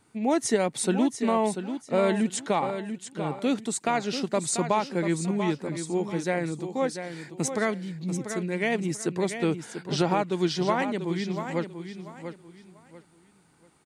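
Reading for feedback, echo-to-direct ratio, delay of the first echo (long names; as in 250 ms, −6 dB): 27%, −8.5 dB, 690 ms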